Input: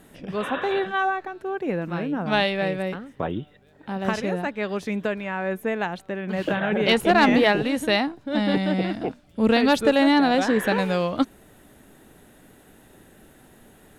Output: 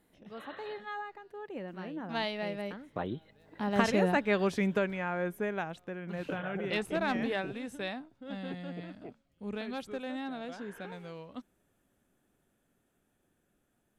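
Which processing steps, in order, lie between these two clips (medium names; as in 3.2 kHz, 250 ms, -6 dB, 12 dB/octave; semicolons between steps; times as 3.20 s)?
Doppler pass-by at 4.19 s, 26 m/s, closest 14 m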